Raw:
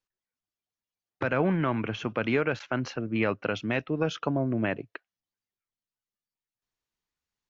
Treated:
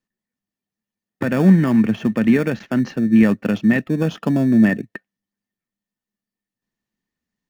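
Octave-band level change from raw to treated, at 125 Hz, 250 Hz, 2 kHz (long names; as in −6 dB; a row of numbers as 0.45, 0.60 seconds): +11.5, +15.5, +5.5 decibels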